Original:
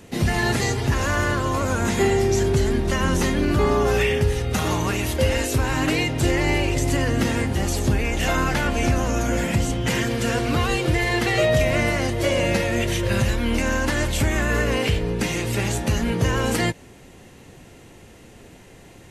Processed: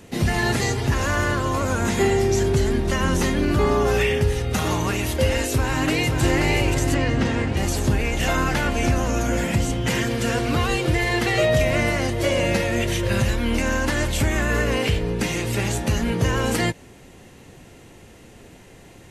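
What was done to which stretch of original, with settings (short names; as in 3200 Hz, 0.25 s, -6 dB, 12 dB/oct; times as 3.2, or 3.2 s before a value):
5.5–6.21 echo throw 0.53 s, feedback 65%, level -5 dB
6.94–7.57 air absorption 92 m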